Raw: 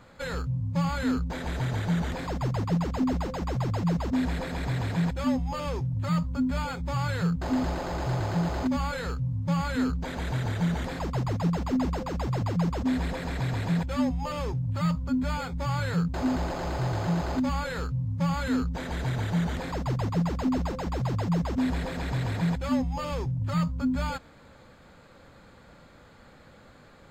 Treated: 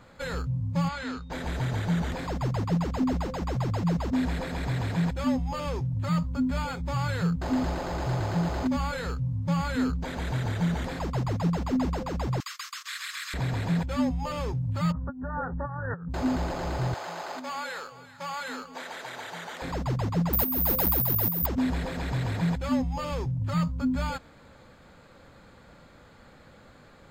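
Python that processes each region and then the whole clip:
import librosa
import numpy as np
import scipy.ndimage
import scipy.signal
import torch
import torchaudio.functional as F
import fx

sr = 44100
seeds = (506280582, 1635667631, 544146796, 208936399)

y = fx.lowpass(x, sr, hz=6000.0, slope=12, at=(0.88, 1.3), fade=0.02)
y = fx.low_shelf(y, sr, hz=480.0, db=-12.0, at=(0.88, 1.3), fade=0.02)
y = fx.dmg_tone(y, sr, hz=3700.0, level_db=-63.0, at=(0.88, 1.3), fade=0.02)
y = fx.chain(y, sr, fx.steep_highpass(hz=1100.0, slope=96),
    fx.high_shelf(hz=2600.0, db=11.5), at=(12.4, 13.34))
y = fx.chain(y, sr, fx.low_shelf(hz=170.0, db=-4.5),
    fx.over_compress(threshold_db=-32.0, ratio=-0.5),
    fx.brickwall_lowpass(high_hz=1900.0), at=(14.92, 16.11))
y = fx.chain(y, sr, fx.highpass(hz=640.0, slope=12),
    fx.echo_alternate(ms=196, hz=850.0, feedback_pct=53, wet_db=-10), at=(16.94, 19.62))
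y = fx.chain(y, sr, fx.high_shelf(hz=3800.0, db=7.0),
    fx.over_compress(threshold_db=-30.0, ratio=-1.0),
    fx.resample_bad(factor=3, down='filtered', up='zero_stuff'), at=(20.33, 21.46))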